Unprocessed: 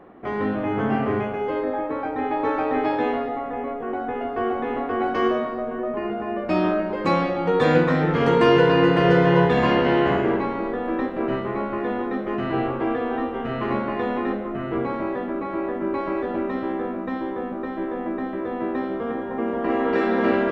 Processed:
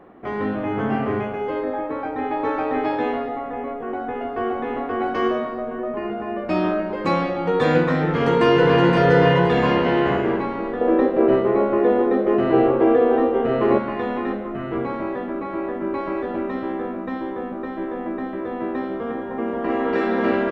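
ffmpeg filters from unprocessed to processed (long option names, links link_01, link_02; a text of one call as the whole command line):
ffmpeg -i in.wav -filter_complex "[0:a]asplit=2[link_01][link_02];[link_02]afade=type=in:start_time=8.09:duration=0.01,afade=type=out:start_time=8.86:duration=0.01,aecho=0:1:520|1040|1560|2080|2600:0.707946|0.247781|0.0867234|0.0303532|0.0106236[link_03];[link_01][link_03]amix=inputs=2:normalize=0,asettb=1/sr,asplit=3[link_04][link_05][link_06];[link_04]atrim=end=10.814[link_07];[link_05]atrim=start=10.81:end=13.78,asetpts=PTS-STARTPTS,afade=type=in:duration=0.004:curve=qsin,afade=type=out:start_time=2.966:duration=0.004:curve=qsin,equalizer=frequency=460:width_type=o:width=1.3:gain=12[link_08];[link_06]atrim=start=13.776[link_09];[link_07][link_08]acrossfade=duration=0.004:curve1=hsin:curve2=qsin[link_10];[link_10][link_09]acrossfade=duration=0.004:curve1=qsin:curve2=hsin" out.wav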